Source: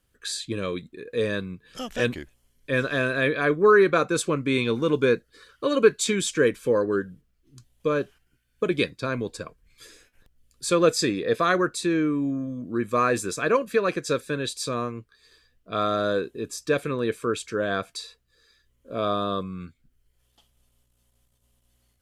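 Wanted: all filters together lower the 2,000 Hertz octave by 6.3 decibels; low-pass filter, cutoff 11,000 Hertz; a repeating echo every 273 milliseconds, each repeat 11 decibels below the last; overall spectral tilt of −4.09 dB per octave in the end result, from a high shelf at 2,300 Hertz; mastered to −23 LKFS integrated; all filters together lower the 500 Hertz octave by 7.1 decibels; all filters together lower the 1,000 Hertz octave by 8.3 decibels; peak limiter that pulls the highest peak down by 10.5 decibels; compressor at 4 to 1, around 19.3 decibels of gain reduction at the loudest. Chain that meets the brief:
low-pass filter 11,000 Hz
parametric band 500 Hz −7 dB
parametric band 1,000 Hz −8 dB
parametric band 2,000 Hz −7.5 dB
high-shelf EQ 2,300 Hz +5 dB
downward compressor 4 to 1, threshold −43 dBFS
brickwall limiter −38 dBFS
repeating echo 273 ms, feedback 28%, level −11 dB
level +25.5 dB

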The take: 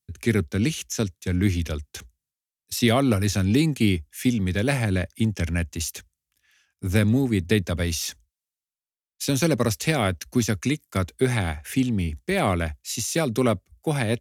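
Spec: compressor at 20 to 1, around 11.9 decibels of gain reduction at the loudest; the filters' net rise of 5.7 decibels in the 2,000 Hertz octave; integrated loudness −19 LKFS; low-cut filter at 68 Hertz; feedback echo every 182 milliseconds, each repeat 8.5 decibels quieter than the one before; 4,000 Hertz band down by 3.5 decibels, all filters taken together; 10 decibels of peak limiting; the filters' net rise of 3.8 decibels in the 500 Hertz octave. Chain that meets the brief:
high-pass filter 68 Hz
parametric band 500 Hz +4.5 dB
parametric band 2,000 Hz +8.5 dB
parametric band 4,000 Hz −7.5 dB
downward compressor 20 to 1, threshold −25 dBFS
brickwall limiter −21 dBFS
repeating echo 182 ms, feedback 38%, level −8.5 dB
level +13 dB

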